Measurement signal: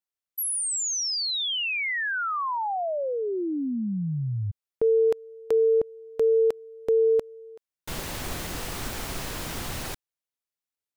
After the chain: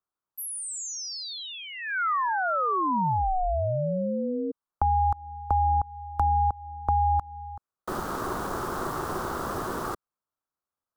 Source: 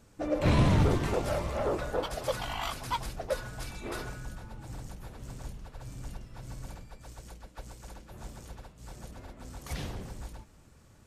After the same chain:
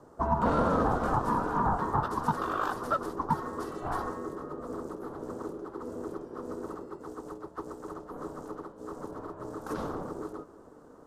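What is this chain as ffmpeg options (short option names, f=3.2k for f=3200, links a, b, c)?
-filter_complex "[0:a]aeval=exprs='val(0)*sin(2*PI*370*n/s)':c=same,highshelf=f=1.7k:t=q:w=3:g=-10.5,acrossover=split=240|650[a][b][c];[a]acompressor=threshold=-36dB:ratio=4[d];[b]acompressor=threshold=-46dB:ratio=4[e];[c]acompressor=threshold=-33dB:ratio=4[f];[d][e][f]amix=inputs=3:normalize=0,volume=7dB"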